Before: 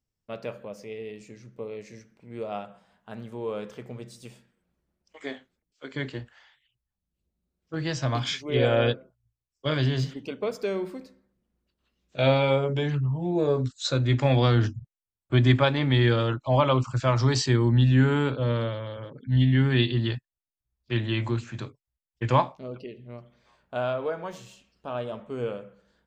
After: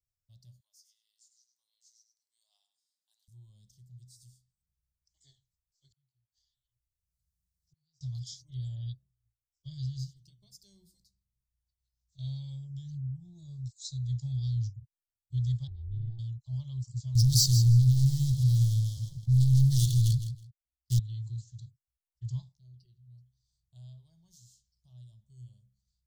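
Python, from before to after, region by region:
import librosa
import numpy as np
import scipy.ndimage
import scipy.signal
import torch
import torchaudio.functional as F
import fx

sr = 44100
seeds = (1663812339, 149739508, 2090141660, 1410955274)

y = fx.chain(x, sr, fx.highpass(hz=900.0, slope=24),
    fx.echo_feedback(ms=100, feedback_pct=16, wet_db=-9), at=(0.6, 3.28))
y = fx.chain(y, sr, fx.gate_flip(shuts_db=-35.0, range_db=-35),
    fx.band_squash(depth_pct=40), at=(5.9, 8.01))
y = fx.chain(y, sr, fx.lowpass(hz=1200.0, slope=12),
    fx.peak_eq(hz=300.0, db=-13.0, octaves=0.23),
    fx.ring_mod(carrier_hz=230.0), at=(15.67, 16.19))
y = fx.chain(y, sr, fx.leveller(passes=5),
    fx.echo_feedback(ms=161, feedback_pct=16, wet_db=-10.5), at=(17.15, 20.99))
y = scipy.signal.sosfilt(scipy.signal.cheby2(4, 40, [240.0, 2600.0], 'bandstop', fs=sr, output='sos'), y)
y = fx.peak_eq(y, sr, hz=380.0, db=8.0, octaves=0.44)
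y = F.gain(torch.from_numpy(y), -6.0).numpy()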